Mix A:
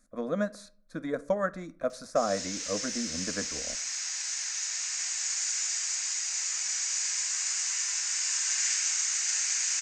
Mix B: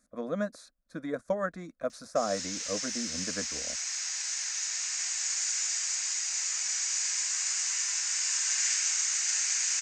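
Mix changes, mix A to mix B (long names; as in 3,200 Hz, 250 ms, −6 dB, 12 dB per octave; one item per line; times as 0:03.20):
speech: send off
master: add high-pass filter 41 Hz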